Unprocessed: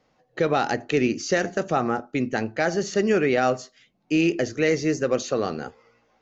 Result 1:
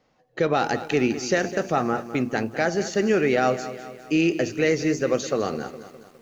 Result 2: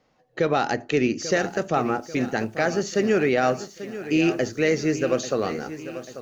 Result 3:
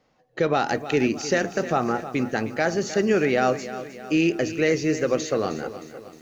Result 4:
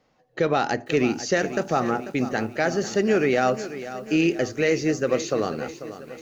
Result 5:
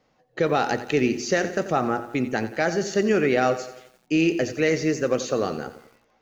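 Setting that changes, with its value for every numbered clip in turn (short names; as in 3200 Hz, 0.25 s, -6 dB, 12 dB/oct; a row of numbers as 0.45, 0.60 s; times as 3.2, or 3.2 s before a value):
lo-fi delay, time: 205, 840, 310, 492, 88 ms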